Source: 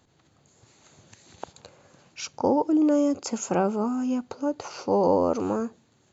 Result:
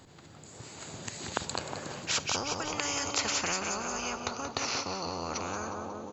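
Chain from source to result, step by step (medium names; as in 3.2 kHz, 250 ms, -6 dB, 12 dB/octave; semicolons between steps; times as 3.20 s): Doppler pass-by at 2.54 s, 18 m/s, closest 20 m; feedback delay 181 ms, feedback 46%, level -11 dB; spectrum-flattening compressor 10:1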